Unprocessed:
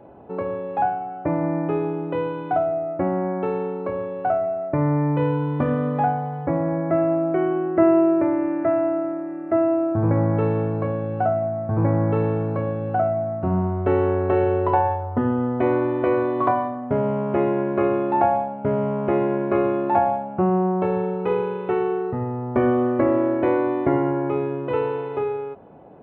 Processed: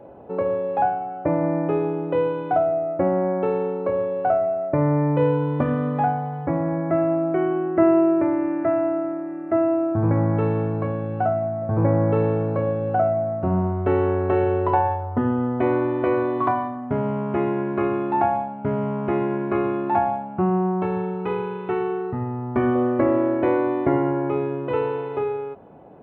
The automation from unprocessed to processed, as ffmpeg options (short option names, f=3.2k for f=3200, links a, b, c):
-af "asetnsamples=n=441:p=0,asendcmd='5.62 equalizer g -3;11.62 equalizer g 4.5;13.72 equalizer g -2.5;16.38 equalizer g -11;22.75 equalizer g -0.5',equalizer=f=530:t=o:w=0.4:g=6"